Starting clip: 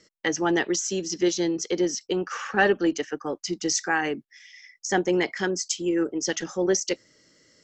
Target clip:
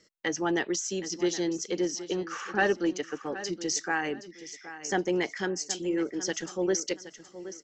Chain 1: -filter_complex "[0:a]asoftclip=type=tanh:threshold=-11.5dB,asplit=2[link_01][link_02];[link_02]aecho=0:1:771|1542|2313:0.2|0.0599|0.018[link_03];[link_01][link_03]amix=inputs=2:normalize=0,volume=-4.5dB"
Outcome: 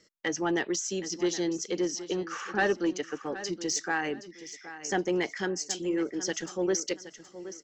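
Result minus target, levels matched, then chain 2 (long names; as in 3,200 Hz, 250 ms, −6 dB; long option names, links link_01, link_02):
soft clipping: distortion +11 dB
-filter_complex "[0:a]asoftclip=type=tanh:threshold=-4.5dB,asplit=2[link_01][link_02];[link_02]aecho=0:1:771|1542|2313:0.2|0.0599|0.018[link_03];[link_01][link_03]amix=inputs=2:normalize=0,volume=-4.5dB"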